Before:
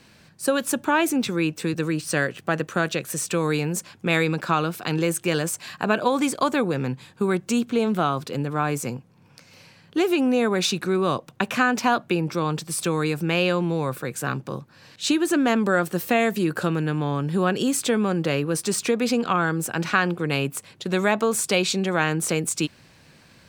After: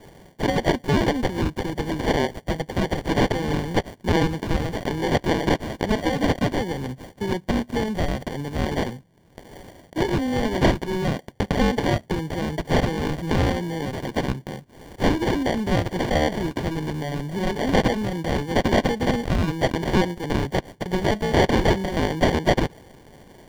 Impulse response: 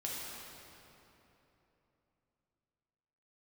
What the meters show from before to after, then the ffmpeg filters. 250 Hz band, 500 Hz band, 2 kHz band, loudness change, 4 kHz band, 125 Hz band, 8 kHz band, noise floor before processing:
0.0 dB, +0.5 dB, -3.0 dB, -0.5 dB, -1.0 dB, +3.0 dB, -11.0 dB, -54 dBFS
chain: -filter_complex "[0:a]tiltshelf=f=1.4k:g=-8.5,asoftclip=type=tanh:threshold=-13.5dB,acrossover=split=320[a][b];[b]acrusher=samples=34:mix=1:aa=0.000001[c];[a][c]amix=inputs=2:normalize=0,acrossover=split=5500[d][e];[e]acompressor=threshold=-48dB:ratio=4:attack=1:release=60[f];[d][f]amix=inputs=2:normalize=0,volume=4dB"

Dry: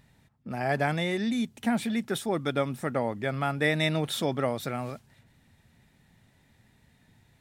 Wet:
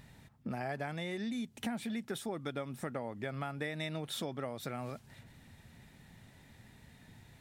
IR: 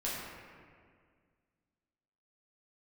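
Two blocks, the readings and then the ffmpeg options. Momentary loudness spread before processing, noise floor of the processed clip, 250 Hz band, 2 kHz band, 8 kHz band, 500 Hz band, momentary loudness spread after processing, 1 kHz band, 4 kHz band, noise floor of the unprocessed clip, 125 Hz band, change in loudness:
8 LU, -61 dBFS, -10.0 dB, -11.5 dB, -7.5 dB, -11.0 dB, 20 LU, -11.0 dB, -9.5 dB, -64 dBFS, -10.0 dB, -10.5 dB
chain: -af "acompressor=threshold=-41dB:ratio=6,volume=4.5dB"

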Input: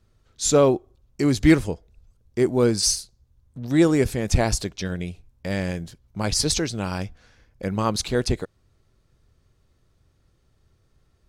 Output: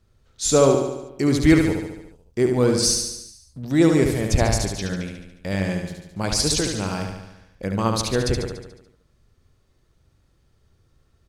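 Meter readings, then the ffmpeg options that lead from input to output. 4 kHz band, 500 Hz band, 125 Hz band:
+1.5 dB, +1.5 dB, +2.0 dB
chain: -af "aecho=1:1:72|144|216|288|360|432|504|576:0.562|0.332|0.196|0.115|0.0681|0.0402|0.0237|0.014"

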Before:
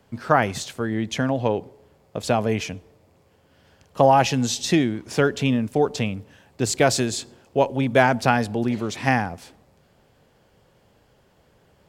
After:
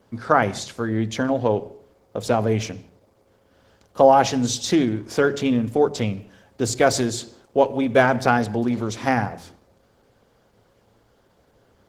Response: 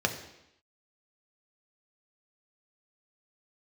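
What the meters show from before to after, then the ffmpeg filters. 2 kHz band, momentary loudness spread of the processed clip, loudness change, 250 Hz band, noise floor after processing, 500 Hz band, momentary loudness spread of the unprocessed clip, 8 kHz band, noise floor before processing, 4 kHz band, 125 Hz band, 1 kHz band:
-0.5 dB, 10 LU, +1.0 dB, +1.0 dB, -61 dBFS, +2.0 dB, 11 LU, -0.5 dB, -60 dBFS, -1.5 dB, -1.5 dB, +1.0 dB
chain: -filter_complex "[0:a]asplit=2[a][b];[1:a]atrim=start_sample=2205,afade=t=out:st=0.28:d=0.01,atrim=end_sample=12789[c];[b][c]afir=irnorm=-1:irlink=0,volume=-16dB[d];[a][d]amix=inputs=2:normalize=0,volume=-1dB" -ar 48000 -c:a libopus -b:a 16k

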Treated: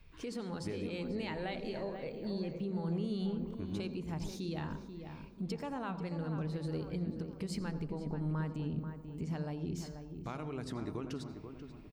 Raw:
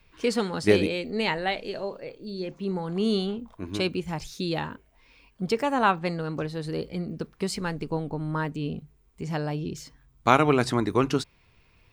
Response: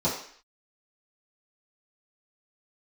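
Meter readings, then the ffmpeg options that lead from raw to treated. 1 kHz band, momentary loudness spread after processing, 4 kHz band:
-18.0 dB, 7 LU, -15.5 dB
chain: -filter_complex "[0:a]lowshelf=f=260:g=9,acompressor=threshold=-24dB:ratio=3,alimiter=level_in=1dB:limit=-24dB:level=0:latency=1:release=268,volume=-1dB,asplit=2[a][b];[b]adelay=487,lowpass=f=1.9k:p=1,volume=-8dB,asplit=2[c][d];[d]adelay=487,lowpass=f=1.9k:p=1,volume=0.44,asplit=2[e][f];[f]adelay=487,lowpass=f=1.9k:p=1,volume=0.44,asplit=2[g][h];[h]adelay=487,lowpass=f=1.9k:p=1,volume=0.44,asplit=2[i][j];[j]adelay=487,lowpass=f=1.9k:p=1,volume=0.44[k];[a][c][e][g][i][k]amix=inputs=6:normalize=0,asplit=2[l][m];[1:a]atrim=start_sample=2205,adelay=84[n];[m][n]afir=irnorm=-1:irlink=0,volume=-24dB[o];[l][o]amix=inputs=2:normalize=0,volume=-5.5dB"

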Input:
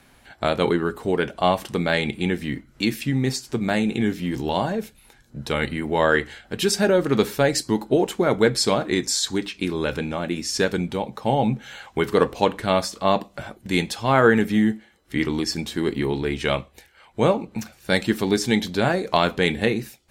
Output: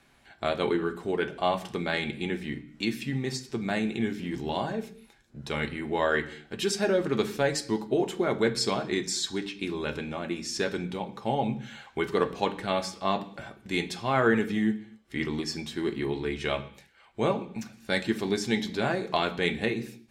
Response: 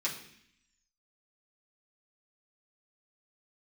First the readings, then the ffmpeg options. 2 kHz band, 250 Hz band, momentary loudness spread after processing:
-6.0 dB, -7.0 dB, 8 LU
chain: -filter_complex "[0:a]highshelf=f=11k:g=-12,asplit=2[a][b];[1:a]atrim=start_sample=2205,afade=t=out:st=0.32:d=0.01,atrim=end_sample=14553[c];[b][c]afir=irnorm=-1:irlink=0,volume=-9dB[d];[a][d]amix=inputs=2:normalize=0,volume=-8dB"

